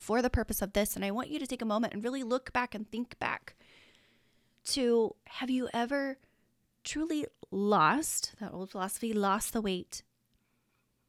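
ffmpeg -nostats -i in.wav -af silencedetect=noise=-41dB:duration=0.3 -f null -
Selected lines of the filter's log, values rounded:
silence_start: 3.48
silence_end: 4.65 | silence_duration: 1.17
silence_start: 6.14
silence_end: 6.85 | silence_duration: 0.72
silence_start: 9.99
silence_end: 11.09 | silence_duration: 1.10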